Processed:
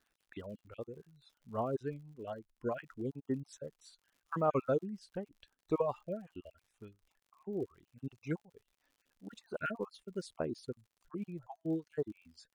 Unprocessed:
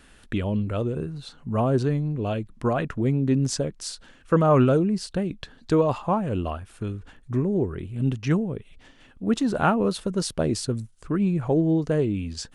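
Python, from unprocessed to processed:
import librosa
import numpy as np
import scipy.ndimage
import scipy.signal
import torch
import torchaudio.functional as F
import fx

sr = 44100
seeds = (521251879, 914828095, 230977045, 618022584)

y = fx.spec_dropout(x, sr, seeds[0], share_pct=32)
y = fx.dereverb_blind(y, sr, rt60_s=0.68)
y = fx.bass_treble(y, sr, bass_db=-8, treble_db=-7)
y = fx.noise_reduce_blind(y, sr, reduce_db=6)
y = fx.dmg_crackle(y, sr, seeds[1], per_s=79.0, level_db=-41.0)
y = fx.upward_expand(y, sr, threshold_db=-40.0, expansion=1.5)
y = y * librosa.db_to_amplitude(-7.0)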